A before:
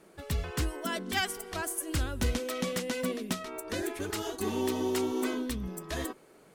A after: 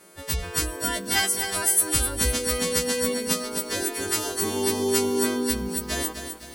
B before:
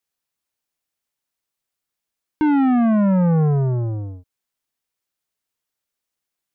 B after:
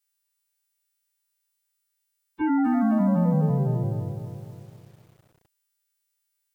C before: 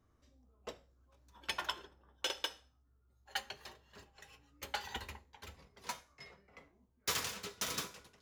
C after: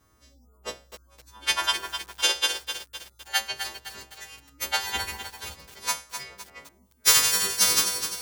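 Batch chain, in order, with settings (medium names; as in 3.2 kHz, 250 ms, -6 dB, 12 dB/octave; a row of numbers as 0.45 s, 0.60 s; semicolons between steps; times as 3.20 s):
partials quantised in pitch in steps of 2 st; spectral gate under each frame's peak -30 dB strong; bit-crushed delay 255 ms, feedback 55%, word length 8-bit, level -7.5 dB; normalise loudness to -24 LUFS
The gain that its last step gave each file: +4.0 dB, -5.5 dB, +10.0 dB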